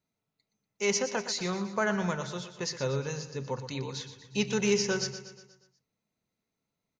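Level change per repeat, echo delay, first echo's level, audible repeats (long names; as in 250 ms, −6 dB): −5.5 dB, 120 ms, −11.5 dB, 5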